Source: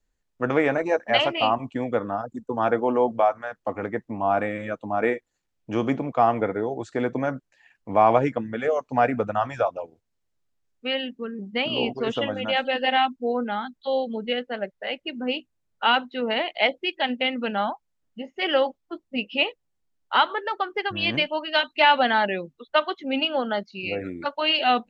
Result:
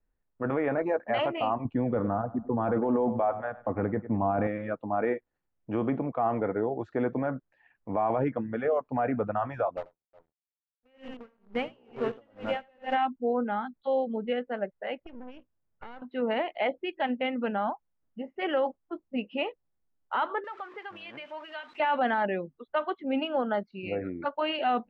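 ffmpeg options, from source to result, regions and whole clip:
ffmpeg -i in.wav -filter_complex "[0:a]asettb=1/sr,asplit=3[link_01][link_02][link_03];[link_01]atrim=end=1.654[link_04];[link_02]atrim=start=1.65:end=4.47,asetpts=PTS-STARTPTS,afade=type=in:duration=0.004:curve=qsin,afade=type=out:start_time=2.816:duration=0.004:curve=qsin,lowshelf=frequency=260:gain=11,aecho=1:1:101|202|303:0.126|0.0529|0.0222,atrim=end_sample=124362[link_05];[link_03]atrim=start=4.466[link_06];[link_04][link_05]acrossfade=duration=0.004:curve1=hsin:curve2=qsin[link_07];[link_07][link_06]acrossfade=duration=0.004:curve1=qsin:curve2=hsin,asettb=1/sr,asplit=3[link_08][link_09][link_10];[link_08]atrim=end=9.774[link_11];[link_09]atrim=start=9.77:end=12.95,asetpts=PTS-STARTPTS,afade=type=in:duration=0.004:curve=qsin,afade=type=out:start_time=3.176:duration=0.004:curve=qsin,acrusher=bits=6:dc=4:mix=0:aa=0.000001,aecho=1:1:86|361:0.422|0.133,atrim=end_sample=140238,aeval=exprs='val(0)*pow(10,-36*(0.5-0.5*cos(2*PI*2.2*n/s))/20)':channel_layout=same[link_12];[link_10]atrim=start=12.946[link_13];[link_11][link_12]acrossfade=duration=0.004:curve1=hsin:curve2=qsin[link_14];[link_14][link_13]acrossfade=duration=0.004:curve1=qsin:curve2=hsin,asettb=1/sr,asplit=3[link_15][link_16][link_17];[link_15]atrim=end=15.034[link_18];[link_16]atrim=start=15.03:end=16.02,asetpts=PTS-STARTPTS,afade=type=in:duration=0.004:curve=qsin,afade=type=out:start_time=0.986:duration=0.004:curve=qsin,aeval=exprs='max(val(0),0)':channel_layout=same,acompressor=threshold=-35dB:ratio=10:attack=3.2:release=140:knee=1:detection=peak,lowpass=5400[link_19];[link_17]atrim=start=16.016[link_20];[link_18][link_19]acrossfade=duration=0.004:curve1=hsin:curve2=qsin[link_21];[link_21][link_20]acrossfade=duration=0.004:curve1=qsin:curve2=hsin,asettb=1/sr,asplit=3[link_22][link_23][link_24];[link_22]atrim=end=20.444[link_25];[link_23]atrim=start=20.44:end=21.8,asetpts=PTS-STARTPTS,afade=type=in:duration=0.004:curve=qsin,afade=type=out:start_time=1.356:duration=0.004:curve=qsin,aeval=exprs='val(0)+0.5*0.0211*sgn(val(0))':channel_layout=same,highpass=frequency=1300:poles=1,acompressor=threshold=-36dB:ratio=2:attack=3.2:release=140:knee=1:detection=peak[link_26];[link_24]atrim=start=21.796[link_27];[link_25][link_26]acrossfade=duration=0.004:curve1=hsin:curve2=qsin[link_28];[link_28][link_27]acrossfade=duration=0.004:curve1=qsin:curve2=hsin,lowpass=1600,alimiter=limit=-16.5dB:level=0:latency=1:release=12,volume=-2dB" out.wav

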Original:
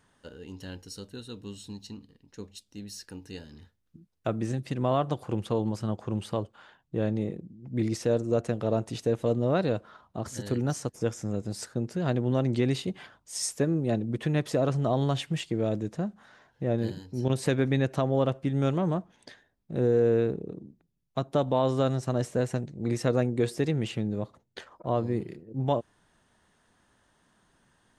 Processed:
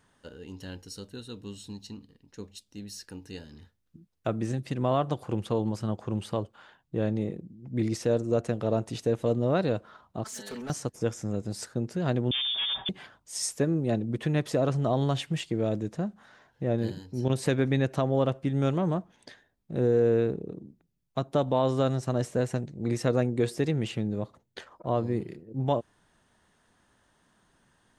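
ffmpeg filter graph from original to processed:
ffmpeg -i in.wav -filter_complex "[0:a]asettb=1/sr,asplit=3[link_01][link_02][link_03];[link_01]atrim=end=10.244[link_04];[link_02]atrim=start=10.24:end=10.7,asetpts=PTS-STARTPTS,afade=type=in:duration=0.004:curve=qsin,afade=type=out:start_time=0.456:duration=0.004:curve=qsin,highpass=frequency=910:poles=1,aecho=1:1:4.6:0.97,atrim=end_sample=20286,volume=34.5dB,asoftclip=hard,volume=-34.5dB[link_05];[link_03]atrim=start=10.696[link_06];[link_04][link_05]acrossfade=duration=0.004:curve1=hsin:curve2=qsin[link_07];[link_07][link_06]acrossfade=duration=0.004:curve1=qsin:curve2=hsin,asettb=1/sr,asplit=3[link_08][link_09][link_10];[link_08]atrim=end=12.314[link_11];[link_09]atrim=start=12.31:end=12.89,asetpts=PTS-STARTPTS,afade=type=in:duration=0.004:curve=qsin,afade=type=out:start_time=0.576:duration=0.004:curve=qsin,aecho=1:1:5.5:0.67,atrim=end_sample=25578,volume=27.5dB,asoftclip=hard,volume=-27.5dB,lowpass=frequency=3100:width_type=q:width=0.5098,lowpass=frequency=3100:width_type=q:width=0.6013,lowpass=frequency=3100:width_type=q:width=0.9,lowpass=frequency=3100:width_type=q:width=2.563,afreqshift=-3700[link_12];[link_10]atrim=start=12.886[link_13];[link_11][link_12]acrossfade=duration=0.004:curve1=hsin:curve2=qsin[link_14];[link_14][link_13]acrossfade=duration=0.004:curve1=qsin:curve2=hsin" out.wav

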